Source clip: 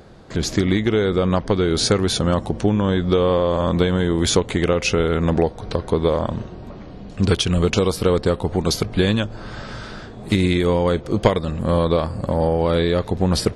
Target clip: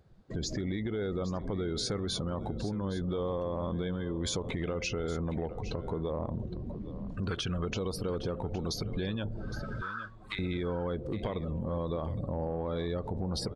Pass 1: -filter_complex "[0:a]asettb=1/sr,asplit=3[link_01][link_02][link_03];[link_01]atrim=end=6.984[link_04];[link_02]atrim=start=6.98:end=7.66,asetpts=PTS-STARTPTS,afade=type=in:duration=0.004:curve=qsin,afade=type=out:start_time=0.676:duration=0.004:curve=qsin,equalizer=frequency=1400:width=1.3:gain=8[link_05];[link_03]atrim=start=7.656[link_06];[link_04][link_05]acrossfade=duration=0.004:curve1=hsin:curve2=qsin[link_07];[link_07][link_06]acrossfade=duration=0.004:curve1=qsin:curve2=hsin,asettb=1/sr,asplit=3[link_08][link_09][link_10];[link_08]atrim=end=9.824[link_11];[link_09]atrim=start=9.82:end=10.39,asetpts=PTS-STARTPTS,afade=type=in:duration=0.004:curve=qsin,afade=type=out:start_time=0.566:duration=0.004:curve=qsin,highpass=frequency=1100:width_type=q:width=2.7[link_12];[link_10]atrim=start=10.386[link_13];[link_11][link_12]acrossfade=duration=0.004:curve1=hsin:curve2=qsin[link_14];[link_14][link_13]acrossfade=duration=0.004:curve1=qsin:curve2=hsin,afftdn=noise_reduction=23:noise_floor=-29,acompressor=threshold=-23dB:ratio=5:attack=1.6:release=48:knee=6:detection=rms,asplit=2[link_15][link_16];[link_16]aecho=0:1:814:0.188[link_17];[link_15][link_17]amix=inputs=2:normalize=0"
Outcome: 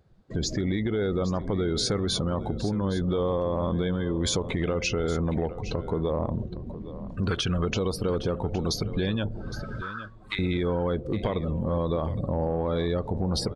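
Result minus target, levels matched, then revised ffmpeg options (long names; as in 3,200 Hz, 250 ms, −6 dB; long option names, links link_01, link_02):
downward compressor: peak gain reduction −7 dB
-filter_complex "[0:a]asettb=1/sr,asplit=3[link_01][link_02][link_03];[link_01]atrim=end=6.984[link_04];[link_02]atrim=start=6.98:end=7.66,asetpts=PTS-STARTPTS,afade=type=in:duration=0.004:curve=qsin,afade=type=out:start_time=0.676:duration=0.004:curve=qsin,equalizer=frequency=1400:width=1.3:gain=8[link_05];[link_03]atrim=start=7.656[link_06];[link_04][link_05]acrossfade=duration=0.004:curve1=hsin:curve2=qsin[link_07];[link_07][link_06]acrossfade=duration=0.004:curve1=qsin:curve2=hsin,asettb=1/sr,asplit=3[link_08][link_09][link_10];[link_08]atrim=end=9.824[link_11];[link_09]atrim=start=9.82:end=10.39,asetpts=PTS-STARTPTS,afade=type=in:duration=0.004:curve=qsin,afade=type=out:start_time=0.566:duration=0.004:curve=qsin,highpass=frequency=1100:width_type=q:width=2.7[link_12];[link_10]atrim=start=10.386[link_13];[link_11][link_12]acrossfade=duration=0.004:curve1=hsin:curve2=qsin[link_14];[link_14][link_13]acrossfade=duration=0.004:curve1=qsin:curve2=hsin,afftdn=noise_reduction=23:noise_floor=-29,acompressor=threshold=-31.5dB:ratio=5:attack=1.6:release=48:knee=6:detection=rms,asplit=2[link_15][link_16];[link_16]aecho=0:1:814:0.188[link_17];[link_15][link_17]amix=inputs=2:normalize=0"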